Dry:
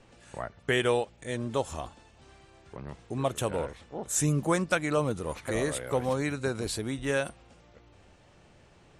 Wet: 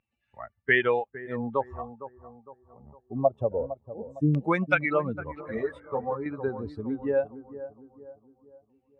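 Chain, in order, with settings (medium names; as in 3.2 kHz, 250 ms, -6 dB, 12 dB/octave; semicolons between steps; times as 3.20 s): expander on every frequency bin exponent 2; high-pass 93 Hz; in parallel at -1.5 dB: compression, threshold -36 dBFS, peak gain reduction 13 dB; on the sum: LFO low-pass saw down 0.23 Hz 420–2600 Hz; bucket-brigade echo 458 ms, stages 4096, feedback 42%, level -13.5 dB; 5.41–6.26 s: three-phase chorus; trim +1.5 dB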